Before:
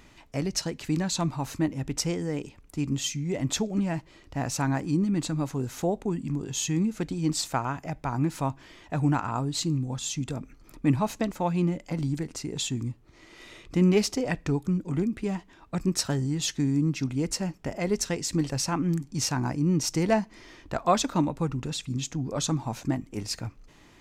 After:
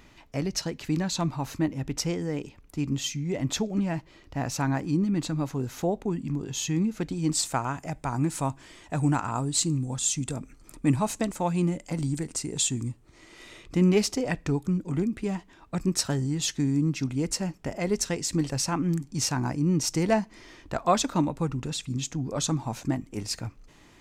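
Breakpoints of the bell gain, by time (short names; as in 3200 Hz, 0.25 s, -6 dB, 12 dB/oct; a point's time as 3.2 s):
bell 8500 Hz 0.63 oct
6.99 s -4 dB
7.26 s +4.5 dB
7.85 s +12.5 dB
12.81 s +12.5 dB
13.62 s +2.5 dB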